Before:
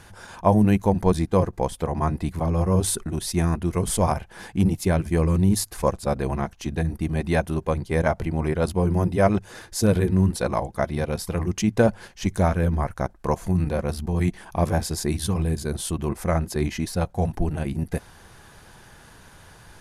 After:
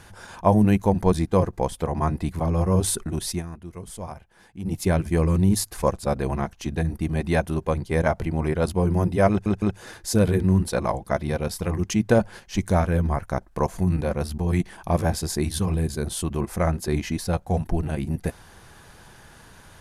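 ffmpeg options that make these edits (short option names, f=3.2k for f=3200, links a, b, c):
-filter_complex "[0:a]asplit=5[a][b][c][d][e];[a]atrim=end=3.43,asetpts=PTS-STARTPTS,afade=t=out:st=3.31:d=0.12:silence=0.199526[f];[b]atrim=start=3.43:end=4.64,asetpts=PTS-STARTPTS,volume=-14dB[g];[c]atrim=start=4.64:end=9.462,asetpts=PTS-STARTPTS,afade=t=in:d=0.12:silence=0.199526[h];[d]atrim=start=9.298:end=9.462[i];[e]atrim=start=9.298[j];[f][g][h]concat=n=3:v=0:a=1[k];[k][i]acrossfade=d=0.004:c1=hsin:c2=hsin[l];[l][j]acrossfade=d=0.004:c1=hsin:c2=hsin"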